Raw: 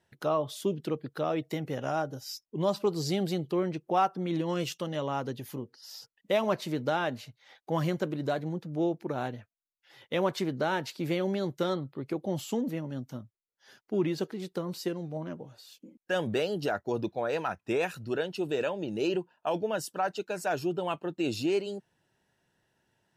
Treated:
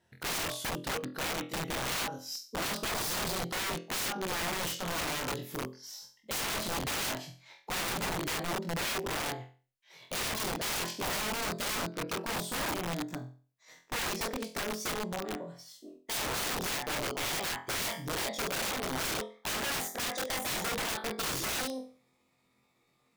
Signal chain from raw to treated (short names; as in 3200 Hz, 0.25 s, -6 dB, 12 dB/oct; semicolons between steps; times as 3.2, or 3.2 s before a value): gliding pitch shift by +5 st starting unshifted; flutter echo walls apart 4 m, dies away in 0.38 s; wrapped overs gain 28.5 dB